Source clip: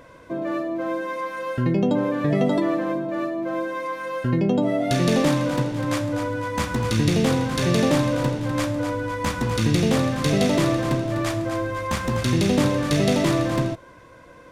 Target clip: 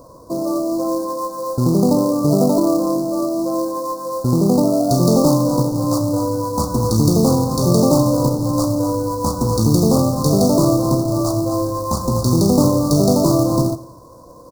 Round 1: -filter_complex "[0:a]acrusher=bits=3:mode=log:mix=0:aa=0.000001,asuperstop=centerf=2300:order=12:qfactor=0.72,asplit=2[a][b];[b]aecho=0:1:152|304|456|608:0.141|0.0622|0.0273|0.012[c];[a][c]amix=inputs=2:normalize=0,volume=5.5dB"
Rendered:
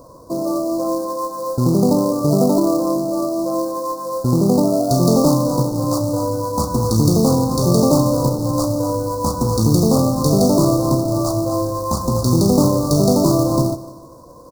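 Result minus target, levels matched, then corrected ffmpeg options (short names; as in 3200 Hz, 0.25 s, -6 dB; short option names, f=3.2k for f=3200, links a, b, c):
echo 67 ms late
-filter_complex "[0:a]acrusher=bits=3:mode=log:mix=0:aa=0.000001,asuperstop=centerf=2300:order=12:qfactor=0.72,asplit=2[a][b];[b]aecho=0:1:85|170|255|340:0.141|0.0622|0.0273|0.012[c];[a][c]amix=inputs=2:normalize=0,volume=5.5dB"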